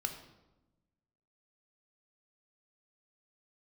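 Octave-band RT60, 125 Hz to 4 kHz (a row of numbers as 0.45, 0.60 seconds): 1.5, 1.5, 1.1, 0.95, 0.75, 0.70 seconds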